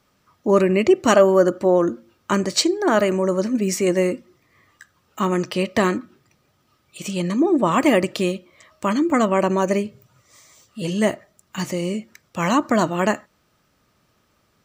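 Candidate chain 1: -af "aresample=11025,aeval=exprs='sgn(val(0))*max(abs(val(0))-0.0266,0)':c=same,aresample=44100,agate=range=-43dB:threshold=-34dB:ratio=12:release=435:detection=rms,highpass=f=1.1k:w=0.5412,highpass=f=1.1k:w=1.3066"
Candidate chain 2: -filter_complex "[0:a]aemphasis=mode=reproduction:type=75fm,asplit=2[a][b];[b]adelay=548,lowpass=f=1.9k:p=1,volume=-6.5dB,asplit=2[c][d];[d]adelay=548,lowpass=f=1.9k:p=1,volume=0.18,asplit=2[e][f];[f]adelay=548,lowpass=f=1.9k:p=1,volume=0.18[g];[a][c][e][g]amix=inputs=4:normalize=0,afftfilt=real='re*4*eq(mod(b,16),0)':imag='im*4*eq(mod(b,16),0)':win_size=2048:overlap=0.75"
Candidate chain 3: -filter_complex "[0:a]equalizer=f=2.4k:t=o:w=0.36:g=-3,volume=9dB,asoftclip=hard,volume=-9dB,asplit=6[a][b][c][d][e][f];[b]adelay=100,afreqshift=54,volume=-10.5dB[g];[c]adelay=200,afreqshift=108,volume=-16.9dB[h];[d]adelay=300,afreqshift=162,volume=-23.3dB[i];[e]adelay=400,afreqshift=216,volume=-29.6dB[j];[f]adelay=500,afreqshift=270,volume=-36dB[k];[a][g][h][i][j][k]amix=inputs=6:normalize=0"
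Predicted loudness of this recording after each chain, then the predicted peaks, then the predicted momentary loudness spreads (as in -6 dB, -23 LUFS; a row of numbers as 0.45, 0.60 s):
-30.5, -21.0, -20.0 LUFS; -9.0, -3.5, -5.5 dBFS; 16, 17, 14 LU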